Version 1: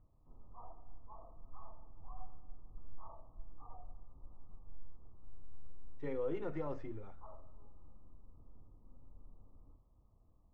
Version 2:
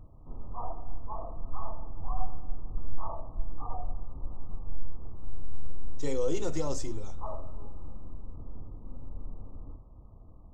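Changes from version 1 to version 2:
background +9.5 dB; master: remove ladder low-pass 2300 Hz, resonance 35%

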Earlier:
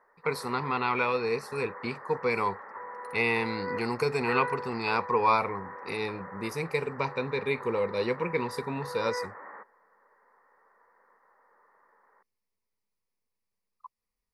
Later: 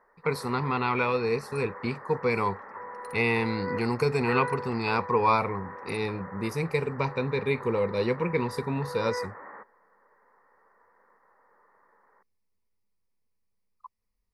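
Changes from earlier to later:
second sound +6.0 dB; master: add low shelf 230 Hz +9.5 dB

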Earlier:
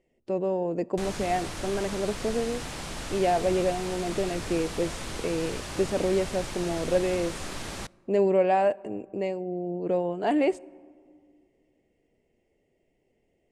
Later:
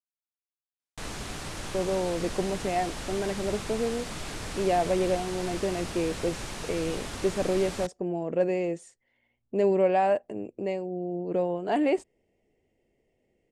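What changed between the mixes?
speech: entry +1.45 s; reverb: off

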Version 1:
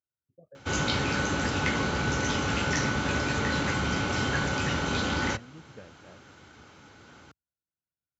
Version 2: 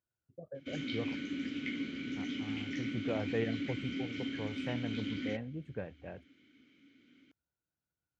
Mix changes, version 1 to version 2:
speech +7.0 dB; background: add vowel filter i

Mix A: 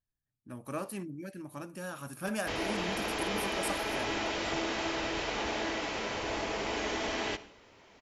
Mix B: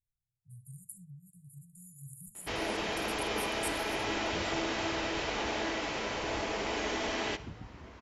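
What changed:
speech: add brick-wall FIR band-stop 170–6800 Hz; second sound: unmuted

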